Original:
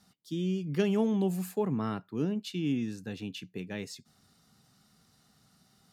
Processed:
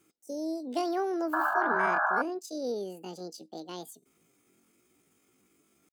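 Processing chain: painted sound noise, 1.34–2.24, 350–1000 Hz -24 dBFS; pitch shift +9.5 st; gain -3 dB

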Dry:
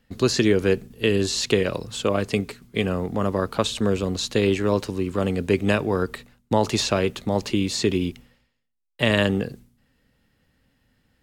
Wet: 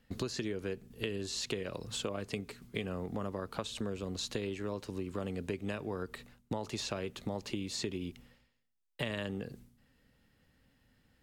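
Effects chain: compressor 6:1, threshold -31 dBFS, peak gain reduction 16 dB; gain -3.5 dB

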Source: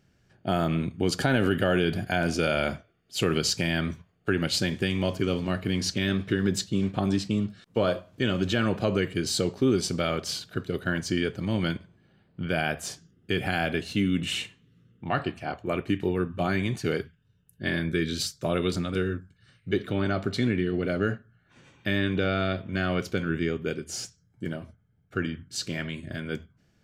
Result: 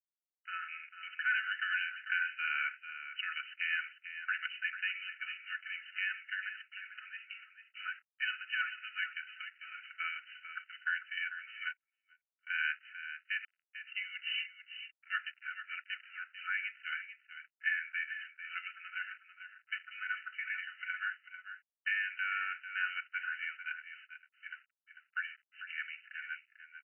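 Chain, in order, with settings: 19.02–19.84 cycle switcher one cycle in 3, muted; comb 4 ms, depth 86%; 13.44–13.87 flipped gate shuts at -23 dBFS, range -26 dB; crossover distortion -41 dBFS; brick-wall FIR band-pass 1300–3000 Hz; echo 0.445 s -10.5 dB; 11.64–12.47 upward expander 2.5:1, over -49 dBFS; gain -3.5 dB

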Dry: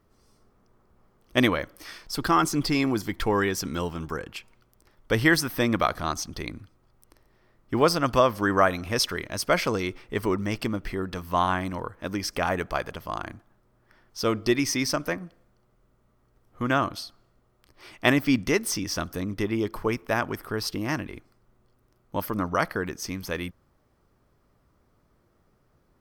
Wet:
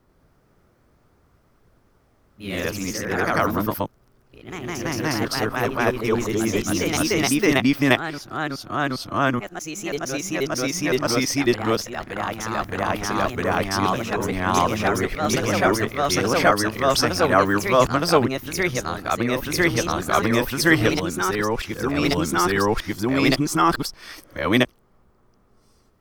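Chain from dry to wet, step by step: whole clip reversed; echoes that change speed 94 ms, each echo +1 st, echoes 3; gain +3 dB

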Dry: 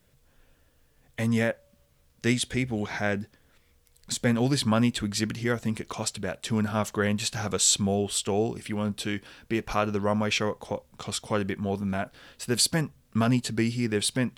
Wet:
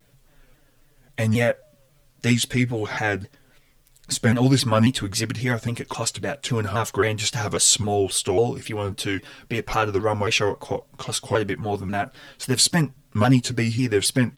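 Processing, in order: comb 7.2 ms, depth 84%; shaped vibrato saw down 3.7 Hz, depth 160 cents; gain +3 dB

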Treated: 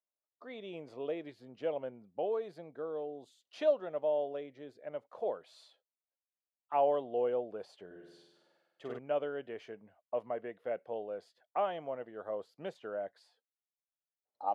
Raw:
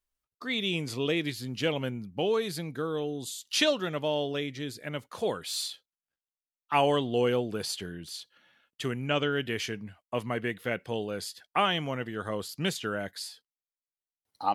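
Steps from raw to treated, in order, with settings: band-pass 620 Hz, Q 2.9; 7.86–8.99 flutter echo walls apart 8.4 m, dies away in 1.1 s

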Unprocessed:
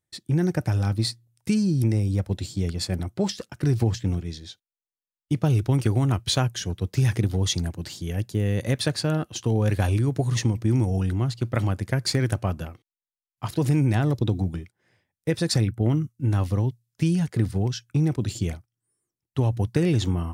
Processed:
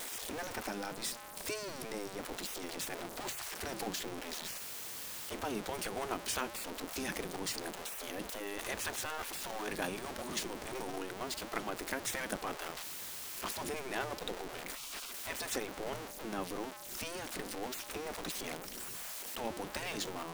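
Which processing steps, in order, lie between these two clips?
zero-crossing step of -25.5 dBFS; spectral gate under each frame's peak -15 dB weak; gain -6.5 dB

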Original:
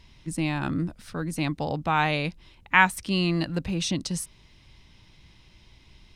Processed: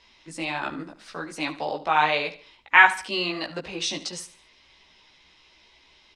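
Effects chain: chorus voices 4, 1.3 Hz, delay 16 ms, depth 3 ms; three-band isolator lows -21 dB, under 360 Hz, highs -22 dB, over 7700 Hz; feedback echo 73 ms, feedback 36%, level -15 dB; gain +6 dB

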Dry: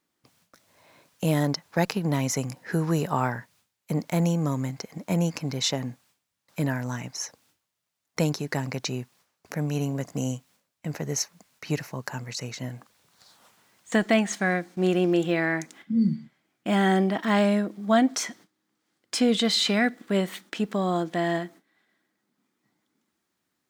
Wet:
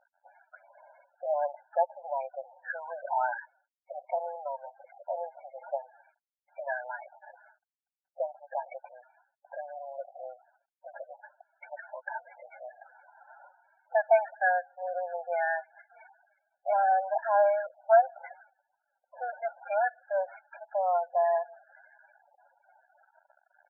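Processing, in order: CVSD 16 kbps; LPF 2000 Hz 24 dB/oct; comb 1.3 ms, depth 87%; reverse; upward compressor, threshold -39 dBFS; reverse; loudest bins only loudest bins 16; brick-wall FIR high-pass 510 Hz

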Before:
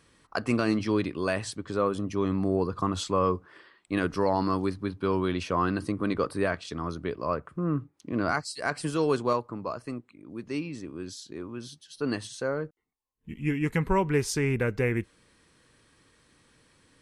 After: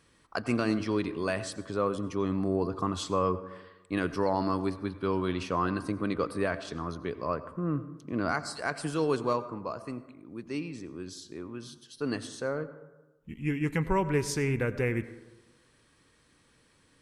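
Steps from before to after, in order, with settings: plate-style reverb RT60 1.1 s, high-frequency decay 0.35×, pre-delay 75 ms, DRR 14 dB; gain -2.5 dB

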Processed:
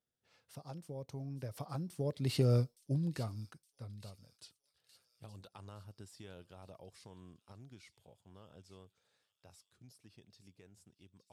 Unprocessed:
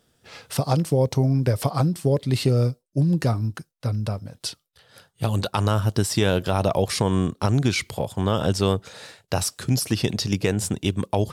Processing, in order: Doppler pass-by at 2.57, 10 m/s, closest 2.5 m; thin delay 0.866 s, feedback 53%, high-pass 4000 Hz, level -11 dB; gain -8.5 dB

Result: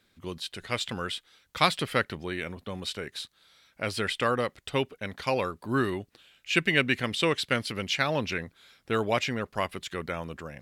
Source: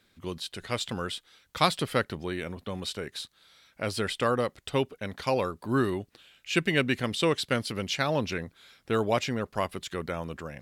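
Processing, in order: dynamic EQ 2200 Hz, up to +6 dB, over -44 dBFS, Q 0.98; gain -1.5 dB

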